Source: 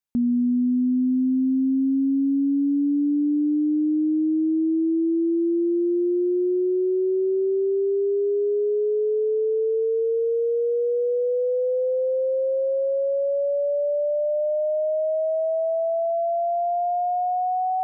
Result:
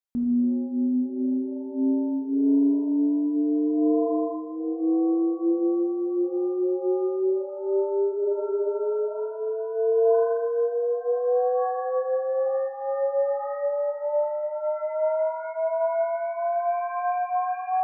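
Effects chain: spectral freeze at 8.15, 0.53 s; shimmer reverb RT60 1.1 s, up +7 st, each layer -8 dB, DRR 0.5 dB; gain -5.5 dB

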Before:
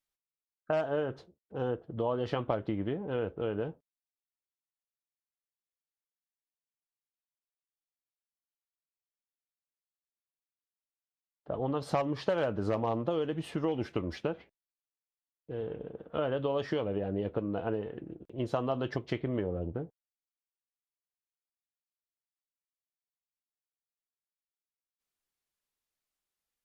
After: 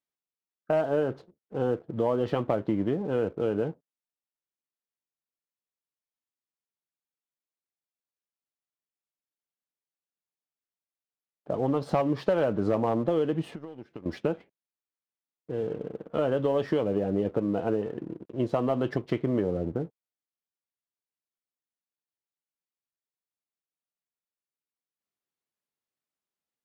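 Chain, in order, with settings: HPF 160 Hz 12 dB/oct; tilt -2 dB/oct; 13.43–14.06 compressor 6:1, threshold -43 dBFS, peak gain reduction 18 dB; sample leveller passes 1

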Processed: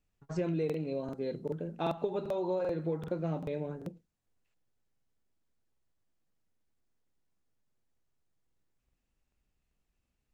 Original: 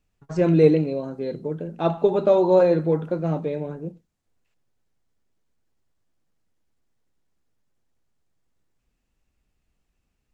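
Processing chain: dynamic EQ 3000 Hz, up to +4 dB, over -46 dBFS, Q 1.3; compressor 16:1, threshold -22 dBFS, peak gain reduction 13.5 dB; crackling interface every 0.39 s, samples 2048, repeat, from 0.65; gain -6.5 dB

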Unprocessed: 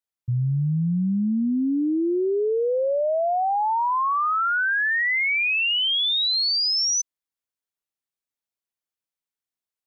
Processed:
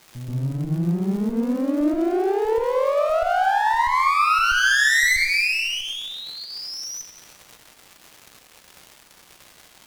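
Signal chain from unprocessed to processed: HPF 180 Hz 6 dB/oct; resonant high shelf 2800 Hz -11.5 dB, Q 3; notch 2200 Hz, Q 15; crackle 310/s -36 dBFS; pump 93 bpm, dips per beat 1, -15 dB, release 93 ms; one-sided clip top -37.5 dBFS, bottom -17.5 dBFS; on a send: reverse echo 0.13 s -7 dB; on the sum: plate-style reverb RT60 1.1 s, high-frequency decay 0.95×, DRR 6.5 dB; gain +4.5 dB

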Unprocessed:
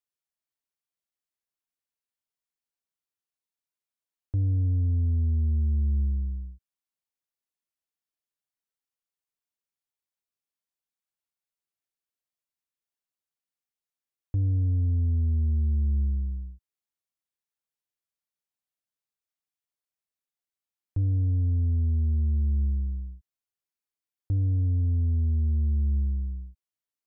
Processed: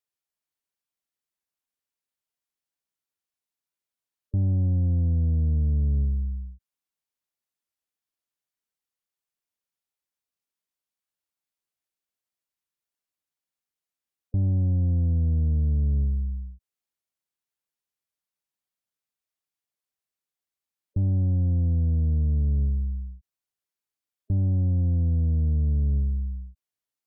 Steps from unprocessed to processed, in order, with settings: spectral gate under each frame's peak -30 dB strong; added harmonics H 2 -10 dB, 4 -21 dB, 7 -44 dB, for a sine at -21 dBFS; gain +1.5 dB

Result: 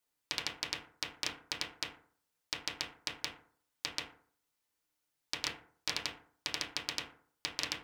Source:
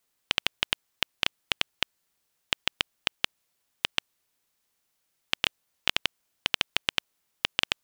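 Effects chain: FDN reverb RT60 0.52 s, low-frequency decay 1×, high-frequency decay 0.45×, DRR 1 dB; Doppler distortion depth 0.84 ms; gain -9 dB

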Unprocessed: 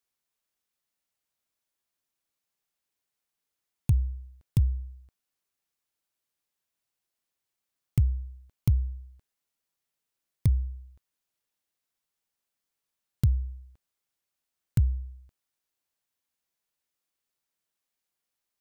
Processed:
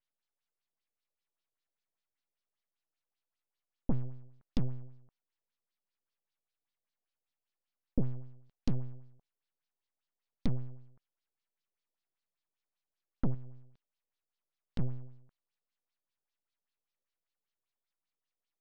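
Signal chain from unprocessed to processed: full-wave rectifier; LFO low-pass sine 5.1 Hz 480–4800 Hz; 13.34–14.79 compressor 5:1, threshold -33 dBFS, peak gain reduction 13 dB; gain -5 dB

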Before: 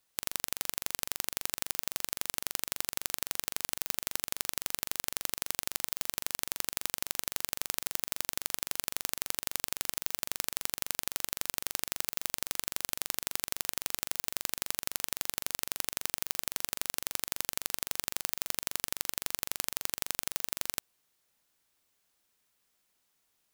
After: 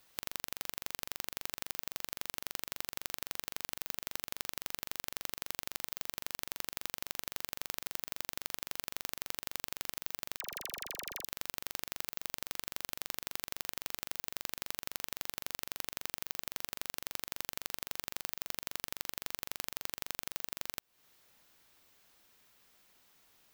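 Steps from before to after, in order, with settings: bell 9400 Hz -6.5 dB 1.2 oct; compressor 6:1, threshold -44 dBFS, peak gain reduction 15.5 dB; 10.37–11.25 dispersion lows, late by 43 ms, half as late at 1100 Hz; gain +11 dB

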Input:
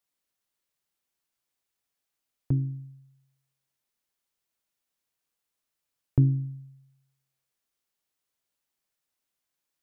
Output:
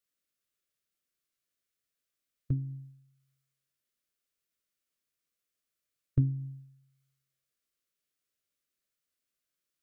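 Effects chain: formant shift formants -3 st; Butterworth band-stop 860 Hz, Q 2; gain -3 dB

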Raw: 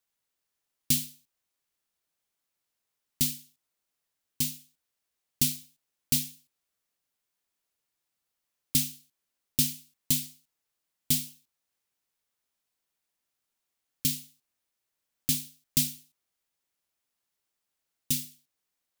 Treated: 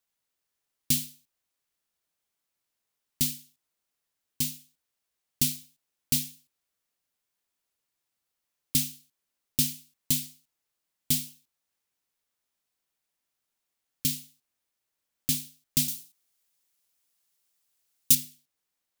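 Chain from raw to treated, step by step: 15.88–18.15 high shelf 3300 Hz +10 dB

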